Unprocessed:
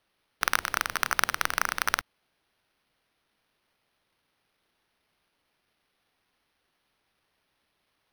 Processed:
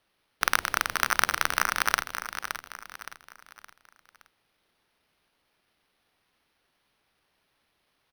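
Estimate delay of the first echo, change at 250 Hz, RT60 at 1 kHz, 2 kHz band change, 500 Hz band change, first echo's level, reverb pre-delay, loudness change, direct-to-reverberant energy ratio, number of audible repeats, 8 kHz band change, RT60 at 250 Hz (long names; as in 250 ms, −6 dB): 568 ms, +2.0 dB, no reverb audible, +2.0 dB, +2.0 dB, −9.0 dB, no reverb audible, +1.0 dB, no reverb audible, 4, +2.0 dB, no reverb audible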